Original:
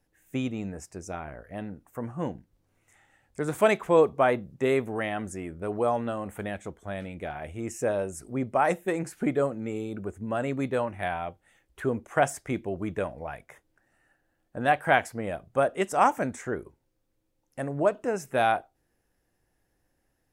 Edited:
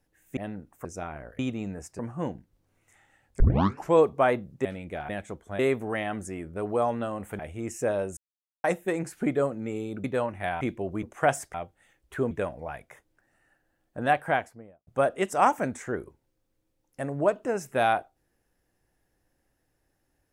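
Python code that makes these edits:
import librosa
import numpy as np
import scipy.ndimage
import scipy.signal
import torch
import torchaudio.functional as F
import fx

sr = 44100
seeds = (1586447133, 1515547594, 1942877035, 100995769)

y = fx.studio_fade_out(x, sr, start_s=14.63, length_s=0.83)
y = fx.edit(y, sr, fx.swap(start_s=0.37, length_s=0.6, other_s=1.51, other_length_s=0.48),
    fx.tape_start(start_s=3.4, length_s=0.53),
    fx.swap(start_s=4.65, length_s=1.8, other_s=6.95, other_length_s=0.44),
    fx.silence(start_s=8.17, length_s=0.47),
    fx.cut(start_s=10.04, length_s=0.59),
    fx.swap(start_s=11.2, length_s=0.77, other_s=12.48, other_length_s=0.42), tone=tone)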